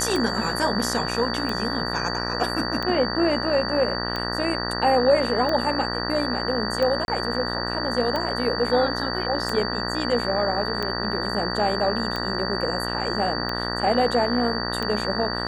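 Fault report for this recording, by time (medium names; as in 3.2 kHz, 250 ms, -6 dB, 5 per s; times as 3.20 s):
buzz 60 Hz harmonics 32 -29 dBFS
tick 45 rpm
whine 4.6 kHz -30 dBFS
7.05–7.08 s: dropout 31 ms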